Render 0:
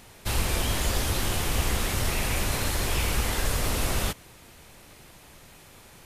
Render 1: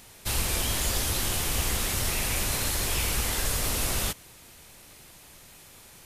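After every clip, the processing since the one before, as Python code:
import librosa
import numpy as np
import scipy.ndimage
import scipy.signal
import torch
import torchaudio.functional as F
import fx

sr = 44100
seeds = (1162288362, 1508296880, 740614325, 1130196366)

y = fx.high_shelf(x, sr, hz=3400.0, db=8.0)
y = y * librosa.db_to_amplitude(-3.5)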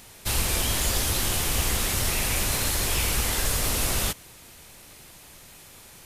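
y = fx.quant_float(x, sr, bits=4)
y = y * librosa.db_to_amplitude(2.5)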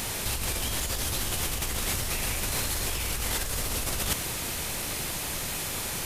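y = fx.over_compress(x, sr, threshold_db=-35.0, ratio=-1.0)
y = y * librosa.db_to_amplitude(6.0)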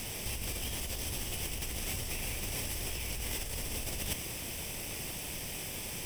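y = fx.lower_of_two(x, sr, delay_ms=0.37)
y = y * librosa.db_to_amplitude(-6.0)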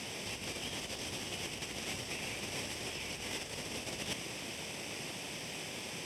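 y = fx.bandpass_edges(x, sr, low_hz=160.0, high_hz=6200.0)
y = y * librosa.db_to_amplitude(1.0)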